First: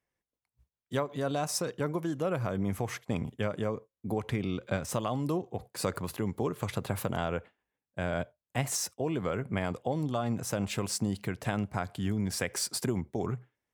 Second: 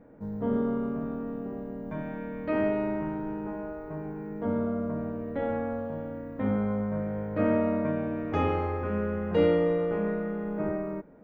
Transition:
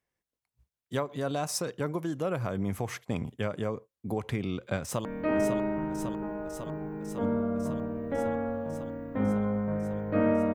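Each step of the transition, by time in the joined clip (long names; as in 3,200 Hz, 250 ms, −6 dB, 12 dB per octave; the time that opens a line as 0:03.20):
first
0:04.80–0:05.05: delay throw 550 ms, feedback 80%, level −6 dB
0:05.05: continue with second from 0:02.29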